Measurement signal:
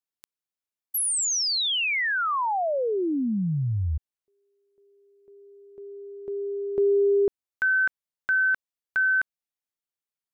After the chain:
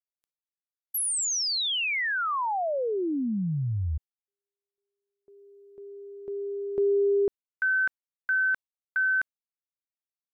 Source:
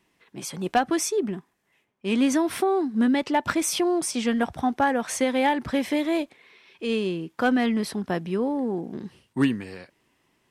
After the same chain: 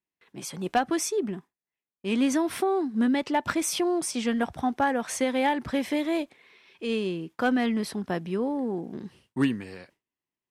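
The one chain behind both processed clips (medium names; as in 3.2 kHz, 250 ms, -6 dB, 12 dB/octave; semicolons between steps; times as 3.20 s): gate with hold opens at -52 dBFS, closes at -57 dBFS, hold 16 ms, range -24 dB; trim -2.5 dB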